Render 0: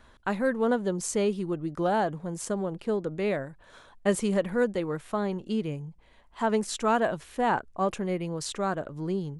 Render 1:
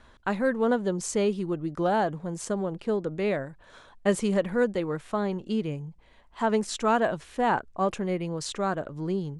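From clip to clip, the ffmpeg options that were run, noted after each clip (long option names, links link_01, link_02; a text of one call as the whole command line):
ffmpeg -i in.wav -af "lowpass=9000,volume=1dB" out.wav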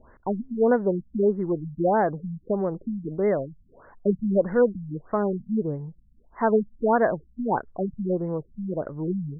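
ffmpeg -i in.wav -af "equalizer=frequency=460:width=1.5:gain=3.5,afftfilt=real='re*lt(b*sr/1024,220*pow(2200/220,0.5+0.5*sin(2*PI*1.6*pts/sr)))':imag='im*lt(b*sr/1024,220*pow(2200/220,0.5+0.5*sin(2*PI*1.6*pts/sr)))':win_size=1024:overlap=0.75,volume=2dB" out.wav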